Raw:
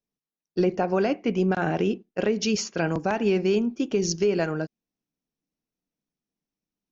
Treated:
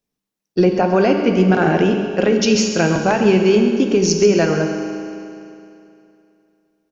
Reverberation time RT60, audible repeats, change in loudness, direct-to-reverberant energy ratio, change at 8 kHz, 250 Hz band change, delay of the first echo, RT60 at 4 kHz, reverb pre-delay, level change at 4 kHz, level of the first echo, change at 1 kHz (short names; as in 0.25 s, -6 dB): 2.7 s, 1, +9.5 dB, 4.0 dB, n/a, +10.0 dB, 0.135 s, 2.5 s, 10 ms, +9.5 dB, -13.0 dB, +9.5 dB